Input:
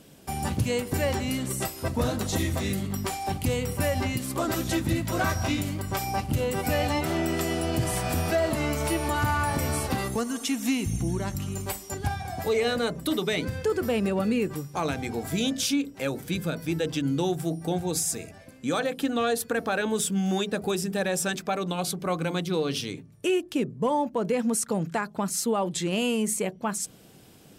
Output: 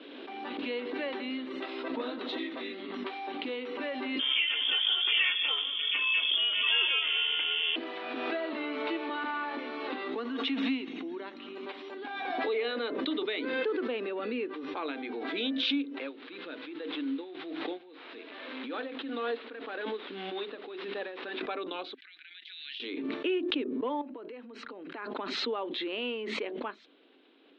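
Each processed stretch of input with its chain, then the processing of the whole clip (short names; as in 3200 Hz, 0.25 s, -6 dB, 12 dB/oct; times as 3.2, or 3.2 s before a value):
4.19–7.76 bell 730 Hz +5 dB 1.8 oct + inverted band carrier 3400 Hz
16.01–21.41 delta modulation 32 kbps, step -37.5 dBFS + dB-linear tremolo 1.8 Hz, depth 28 dB
21.94–22.8 elliptic high-pass 1700 Hz + compressor 2:1, threshold -48 dBFS
24.01–25.15 notch 3500 Hz, Q 9.2 + compressor 8:1, threshold -33 dBFS
whole clip: Chebyshev band-pass 260–3900 Hz, order 5; bell 720 Hz -6 dB 0.87 oct; backwards sustainer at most 25 dB/s; gain -4.5 dB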